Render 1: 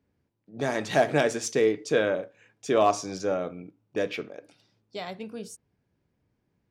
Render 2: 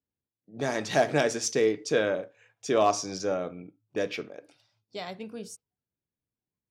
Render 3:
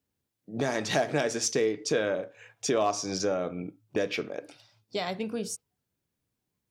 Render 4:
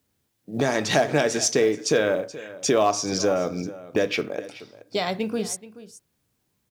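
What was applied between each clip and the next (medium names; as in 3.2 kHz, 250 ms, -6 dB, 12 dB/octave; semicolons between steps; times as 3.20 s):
spectral noise reduction 18 dB; dynamic bell 5.4 kHz, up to +6 dB, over -51 dBFS, Q 2; trim -1.5 dB
compression 2.5:1, threshold -38 dBFS, peak gain reduction 13.5 dB; trim +9 dB
companded quantiser 8-bit; delay 428 ms -17 dB; trim +6 dB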